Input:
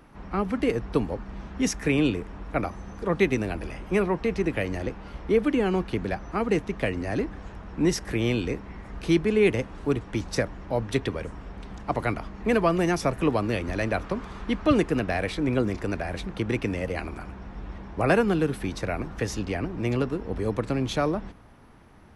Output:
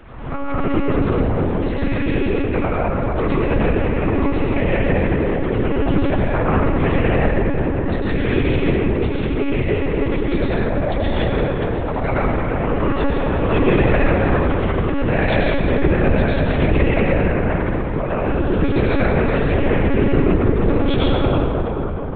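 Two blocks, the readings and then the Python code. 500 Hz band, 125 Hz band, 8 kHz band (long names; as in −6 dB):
+7.5 dB, +11.5 dB, below −35 dB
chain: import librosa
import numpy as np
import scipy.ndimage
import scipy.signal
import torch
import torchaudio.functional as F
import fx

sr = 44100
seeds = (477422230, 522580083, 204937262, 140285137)

y = fx.over_compress(x, sr, threshold_db=-27.0, ratio=-1.0)
y = fx.rev_freeverb(y, sr, rt60_s=4.5, hf_ratio=0.35, predelay_ms=65, drr_db=-7.5)
y = fx.lpc_monotone(y, sr, seeds[0], pitch_hz=280.0, order=10)
y = fx.pre_swell(y, sr, db_per_s=65.0)
y = F.gain(torch.from_numpy(y), 3.0).numpy()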